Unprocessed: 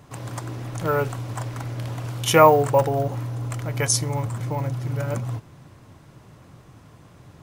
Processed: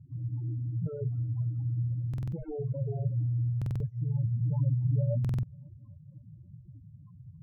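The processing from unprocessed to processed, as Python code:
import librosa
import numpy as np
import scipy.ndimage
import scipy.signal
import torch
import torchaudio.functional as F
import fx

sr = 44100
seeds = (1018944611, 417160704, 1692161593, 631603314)

p1 = fx.high_shelf(x, sr, hz=3200.0, db=11.5)
p2 = fx.rider(p1, sr, range_db=5, speed_s=0.5)
p3 = p1 + F.gain(torch.from_numpy(p2), -1.0).numpy()
p4 = 10.0 ** (-9.5 / 20.0) * (np.abs((p3 / 10.0 ** (-9.5 / 20.0) + 3.0) % 4.0 - 2.0) - 1.0)
p5 = fx.spec_topn(p4, sr, count=4)
p6 = fx.filter_sweep_lowpass(p5, sr, from_hz=240.0, to_hz=3000.0, start_s=4.19, end_s=7.35, q=0.81)
p7 = fx.small_body(p6, sr, hz=(650.0, 1200.0, 3400.0), ring_ms=45, db=17, at=(1.62, 2.1))
p8 = p7 + fx.echo_wet_highpass(p7, sr, ms=268, feedback_pct=59, hz=1500.0, wet_db=-15.0, dry=0)
p9 = fx.buffer_glitch(p8, sr, at_s=(2.09, 3.57, 5.2), block=2048, repeats=4)
y = F.gain(torch.from_numpy(p9), -8.0).numpy()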